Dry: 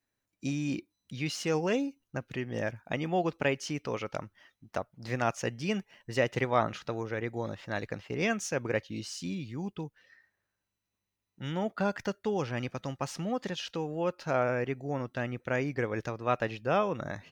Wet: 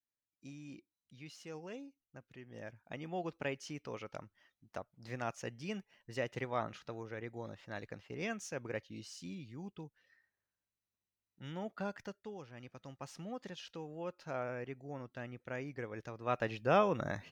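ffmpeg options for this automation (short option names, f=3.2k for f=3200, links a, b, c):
-af "volume=8.5dB,afade=t=in:st=2.38:d=0.95:silence=0.398107,afade=t=out:st=11.83:d=0.64:silence=0.334965,afade=t=in:st=12.47:d=0.72:silence=0.398107,afade=t=in:st=16.06:d=0.7:silence=0.298538"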